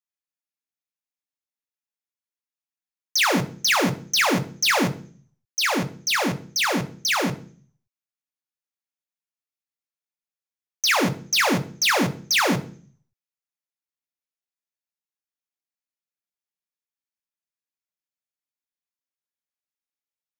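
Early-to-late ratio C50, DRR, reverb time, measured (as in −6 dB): 15.5 dB, 5.0 dB, 0.45 s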